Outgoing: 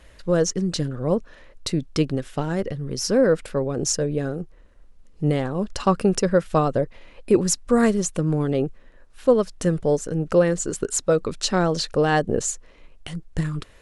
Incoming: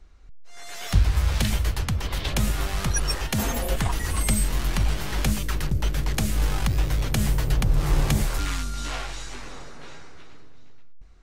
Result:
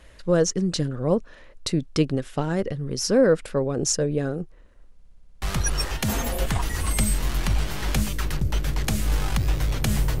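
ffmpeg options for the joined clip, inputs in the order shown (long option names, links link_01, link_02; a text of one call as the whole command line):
ffmpeg -i cue0.wav -i cue1.wav -filter_complex "[0:a]apad=whole_dur=10.2,atrim=end=10.2,asplit=8[link_01][link_02][link_03][link_04][link_05][link_06][link_07][link_08];[link_01]atrim=end=5.002[link_09];[link_02]atrim=start=4.938:end=5.002[link_10];[link_03]atrim=start=4.938:end=5.002[link_11];[link_04]atrim=start=4.938:end=5.002[link_12];[link_05]atrim=start=4.938:end=5.002[link_13];[link_06]atrim=start=4.938:end=5.002[link_14];[link_07]atrim=start=4.938:end=5.002[link_15];[link_08]atrim=start=4.938:end=5.002[link_16];[1:a]atrim=start=2.718:end=7.5[link_17];[link_09][link_10]acrossfade=duration=0.004:curve1=hsin:curve2=hsin[link_18];[link_18][link_11]acrossfade=duration=0.004:curve1=hsin:curve2=hsin[link_19];[link_19][link_12]acrossfade=duration=0.004:curve1=hsin:curve2=hsin[link_20];[link_20][link_13]acrossfade=duration=0.004:curve1=hsin:curve2=hsin[link_21];[link_21][link_14]acrossfade=duration=0.004:curve1=hsin:curve2=hsin[link_22];[link_22][link_15]acrossfade=duration=0.004:curve1=hsin:curve2=hsin[link_23];[link_23][link_16]acrossfade=duration=0.004:curve1=hsin:curve2=hsin[link_24];[link_24][link_17]acrossfade=duration=0.004:curve1=hsin:curve2=hsin" out.wav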